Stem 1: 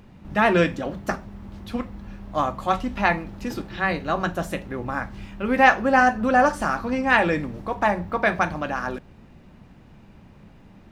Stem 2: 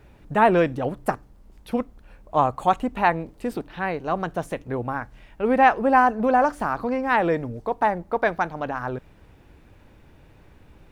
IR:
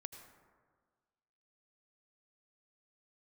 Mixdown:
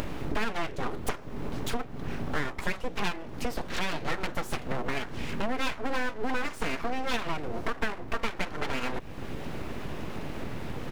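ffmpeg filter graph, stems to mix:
-filter_complex "[0:a]volume=0.5dB[a];[1:a]volume=-1,adelay=7.9,volume=0.5dB[b];[a][b]amix=inputs=2:normalize=0,acompressor=mode=upward:threshold=-20dB:ratio=2.5,aeval=exprs='abs(val(0))':c=same,acompressor=threshold=-24dB:ratio=10"

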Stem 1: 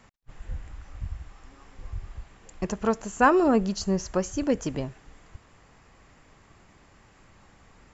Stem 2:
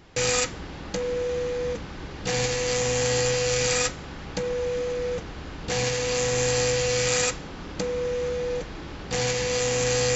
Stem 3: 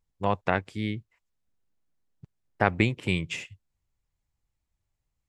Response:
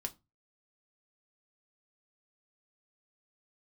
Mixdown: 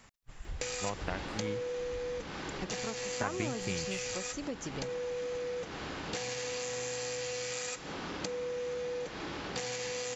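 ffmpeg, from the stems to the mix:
-filter_complex "[0:a]highshelf=f=2.4k:g=8.5,volume=-4.5dB[a];[1:a]highpass=f=290:p=1,acompressor=threshold=-27dB:ratio=6,adelay=450,volume=2.5dB[b];[2:a]acompressor=threshold=-26dB:ratio=3,adelay=600,volume=-7.5dB[c];[a][b]amix=inputs=2:normalize=0,acompressor=threshold=-35dB:ratio=6,volume=0dB[d];[c][d]amix=inputs=2:normalize=0"

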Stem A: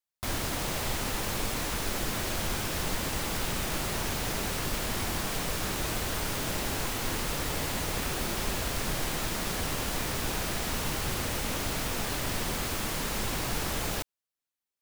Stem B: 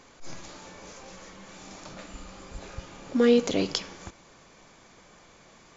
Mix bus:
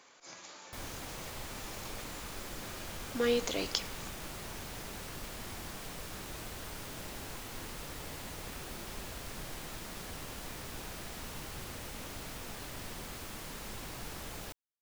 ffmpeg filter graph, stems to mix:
-filter_complex "[0:a]adelay=500,volume=-12dB[a];[1:a]highpass=f=780:p=1,volume=-3dB[b];[a][b]amix=inputs=2:normalize=0"

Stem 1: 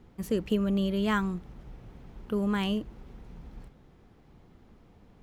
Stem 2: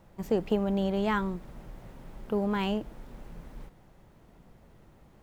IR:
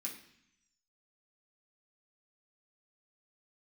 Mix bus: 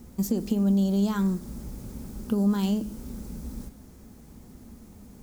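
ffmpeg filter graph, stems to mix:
-filter_complex "[0:a]acompressor=threshold=-31dB:ratio=6,equalizer=f=63:w=0.92:g=10.5,volume=1dB,asplit=2[a][b];[b]volume=-6.5dB[c];[1:a]highshelf=f=2.1k:g=-11.5,alimiter=limit=-24dB:level=0:latency=1:release=23,aexciter=amount=13.7:drive=9.1:freq=4.2k,volume=-3dB,asplit=2[d][e];[e]apad=whole_len=230532[f];[a][f]sidechaincompress=threshold=-41dB:ratio=8:attack=16:release=298[g];[2:a]atrim=start_sample=2205[h];[c][h]afir=irnorm=-1:irlink=0[i];[g][d][i]amix=inputs=3:normalize=0,equalizer=f=230:t=o:w=0.84:g=8"

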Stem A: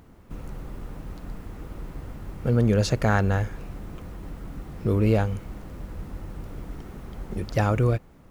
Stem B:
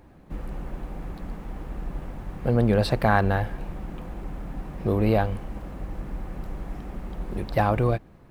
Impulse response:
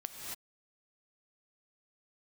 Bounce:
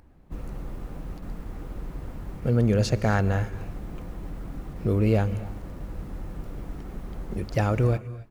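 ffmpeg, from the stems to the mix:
-filter_complex "[0:a]volume=-3.5dB,asplit=2[a][b];[b]volume=-11dB[c];[1:a]acompressor=threshold=-33dB:ratio=2.5,lowshelf=f=77:g=11.5,adelay=0.3,volume=-9dB,asplit=2[d][e];[e]apad=whole_len=366411[f];[a][f]sidechaingate=range=-33dB:threshold=-40dB:ratio=16:detection=peak[g];[2:a]atrim=start_sample=2205[h];[c][h]afir=irnorm=-1:irlink=0[i];[g][d][i]amix=inputs=3:normalize=0"

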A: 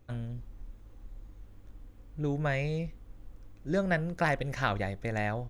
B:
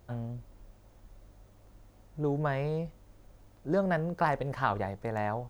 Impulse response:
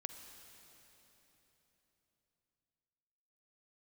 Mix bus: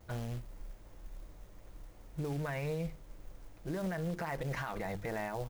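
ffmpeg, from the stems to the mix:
-filter_complex "[0:a]equalizer=f=2k:t=o:w=0.77:g=8,alimiter=level_in=1dB:limit=-24dB:level=0:latency=1,volume=-1dB,volume=-5dB[a];[1:a]bandreject=f=50:t=h:w=6,bandreject=f=100:t=h:w=6,bandreject=f=150:t=h:w=6,bandreject=f=200:t=h:w=6,bandreject=f=250:t=h:w=6,bandreject=f=300:t=h:w=6,bandreject=f=350:t=h:w=6,alimiter=level_in=0.5dB:limit=-24dB:level=0:latency=1:release=122,volume=-0.5dB,acrusher=bits=4:mode=log:mix=0:aa=0.000001,adelay=6.5,volume=1dB[b];[a][b]amix=inputs=2:normalize=0,alimiter=level_in=4.5dB:limit=-24dB:level=0:latency=1:release=51,volume=-4.5dB"

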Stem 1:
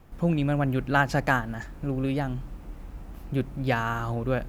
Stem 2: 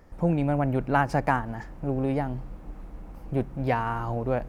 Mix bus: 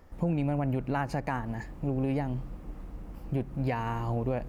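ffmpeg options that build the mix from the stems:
-filter_complex "[0:a]acompressor=threshold=-26dB:ratio=6,volume=-8.5dB[a];[1:a]volume=-3dB[b];[a][b]amix=inputs=2:normalize=0,alimiter=limit=-19.5dB:level=0:latency=1:release=140"

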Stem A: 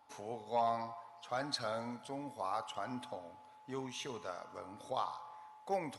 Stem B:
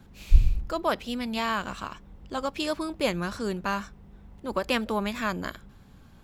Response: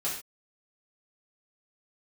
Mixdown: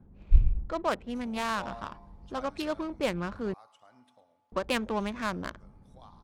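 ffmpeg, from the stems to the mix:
-filter_complex "[0:a]adelay=1050,volume=-10dB,afade=t=out:st=2.31:d=0.52:silence=0.421697,asplit=2[a][b];[b]volume=-15dB[c];[1:a]highshelf=f=7.1k:g=-8.5,adynamicsmooth=sensitivity=3.5:basefreq=740,volume=-2.5dB,asplit=3[d][e][f];[d]atrim=end=3.54,asetpts=PTS-STARTPTS,afade=t=out:st=3.536:d=0.004:c=hsin[g];[e]atrim=start=3.54:end=4.52,asetpts=PTS-STARTPTS,volume=0[h];[f]atrim=start=4.52,asetpts=PTS-STARTPTS,afade=t=in:d=0.004:c=hsin[i];[g][h][i]concat=n=3:v=0:a=1[j];[c]aecho=0:1:108:1[k];[a][j][k]amix=inputs=3:normalize=0,equalizer=f=6.6k:t=o:w=2:g=2.5"

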